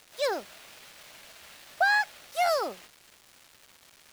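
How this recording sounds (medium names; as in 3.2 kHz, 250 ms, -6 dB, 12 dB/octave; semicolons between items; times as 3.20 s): a quantiser's noise floor 8-bit, dither none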